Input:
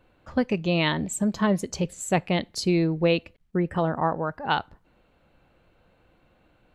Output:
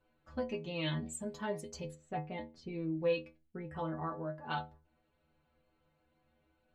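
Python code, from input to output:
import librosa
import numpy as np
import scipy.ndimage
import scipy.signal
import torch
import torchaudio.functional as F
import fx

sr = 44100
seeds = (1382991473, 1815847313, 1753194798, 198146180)

y = fx.spacing_loss(x, sr, db_at_10k=31, at=(1.94, 2.97))
y = fx.stiff_resonator(y, sr, f0_hz=75.0, decay_s=0.41, stiffness=0.008)
y = y * 10.0 ** (-3.5 / 20.0)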